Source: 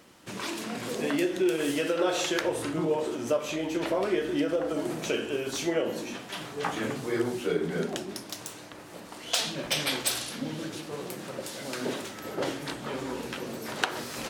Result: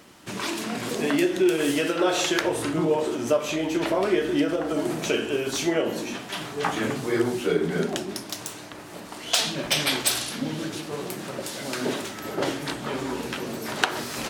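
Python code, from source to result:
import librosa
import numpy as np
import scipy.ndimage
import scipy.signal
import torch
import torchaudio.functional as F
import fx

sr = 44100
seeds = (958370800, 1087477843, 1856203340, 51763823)

y = fx.notch(x, sr, hz=510.0, q=12.0)
y = y * 10.0 ** (5.0 / 20.0)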